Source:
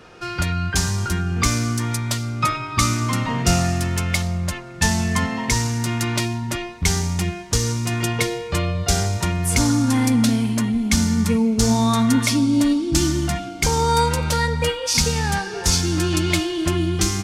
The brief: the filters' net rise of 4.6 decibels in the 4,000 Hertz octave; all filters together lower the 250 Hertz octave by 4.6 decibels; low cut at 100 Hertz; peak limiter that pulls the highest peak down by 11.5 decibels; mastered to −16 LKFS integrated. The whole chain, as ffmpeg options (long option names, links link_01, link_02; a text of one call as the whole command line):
ffmpeg -i in.wav -af "highpass=100,equalizer=frequency=250:width_type=o:gain=-5.5,equalizer=frequency=4000:width_type=o:gain=6,volume=8dB,alimiter=limit=-6.5dB:level=0:latency=1" out.wav